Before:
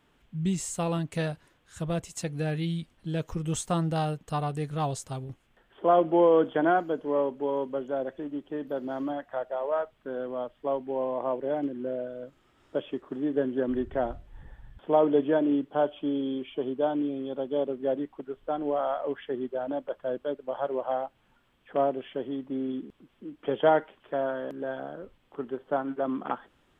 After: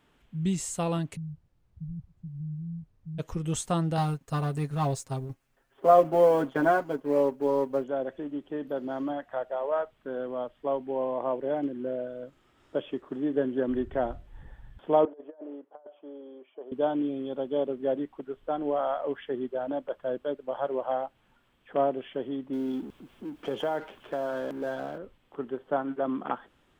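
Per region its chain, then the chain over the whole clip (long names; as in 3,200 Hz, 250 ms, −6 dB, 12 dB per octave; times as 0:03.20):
0:01.15–0:03.18: inverse Chebyshev low-pass filter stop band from 500 Hz, stop band 60 dB + background noise brown −68 dBFS
0:03.97–0:07.84: mu-law and A-law mismatch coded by A + parametric band 3,200 Hz −5.5 dB 0.36 octaves + comb filter 7.4 ms, depth 74%
0:15.05–0:16.72: four-pole ladder band-pass 750 Hz, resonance 30% + compressor whose output falls as the input rises −41 dBFS, ratio −0.5
0:22.53–0:24.98: mu-law and A-law mismatch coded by mu + downward compressor 4 to 1, threshold −26 dBFS + notch filter 1,900 Hz, Q 22
whole clip: no processing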